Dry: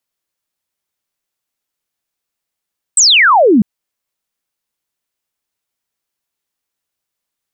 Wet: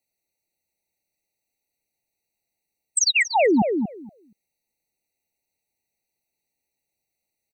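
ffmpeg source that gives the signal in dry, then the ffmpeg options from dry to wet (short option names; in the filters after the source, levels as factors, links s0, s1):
-f lavfi -i "aevalsrc='0.562*clip(t/0.002,0,1)*clip((0.65-t)/0.002,0,1)*sin(2*PI*8400*0.65/log(190/8400)*(exp(log(190/8400)*t/0.65)-1))':d=0.65:s=44100"
-filter_complex "[0:a]alimiter=limit=0.2:level=0:latency=1:release=12,asplit=2[s0][s1];[s1]adelay=236,lowpass=f=2300:p=1,volume=0.531,asplit=2[s2][s3];[s3]adelay=236,lowpass=f=2300:p=1,volume=0.15,asplit=2[s4][s5];[s5]adelay=236,lowpass=f=2300:p=1,volume=0.15[s6];[s2][s4][s6]amix=inputs=3:normalize=0[s7];[s0][s7]amix=inputs=2:normalize=0,afftfilt=real='re*eq(mod(floor(b*sr/1024/940),2),0)':imag='im*eq(mod(floor(b*sr/1024/940),2),0)':win_size=1024:overlap=0.75"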